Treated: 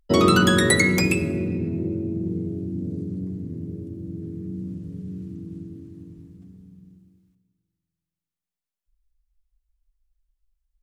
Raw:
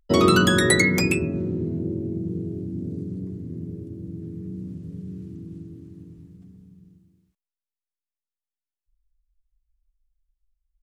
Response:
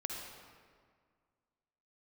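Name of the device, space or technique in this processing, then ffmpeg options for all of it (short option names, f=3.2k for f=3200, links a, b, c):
saturated reverb return: -filter_complex "[0:a]asplit=2[a][b];[1:a]atrim=start_sample=2205[c];[b][c]afir=irnorm=-1:irlink=0,asoftclip=type=tanh:threshold=-10.5dB,volume=-7dB[d];[a][d]amix=inputs=2:normalize=0,volume=-2dB"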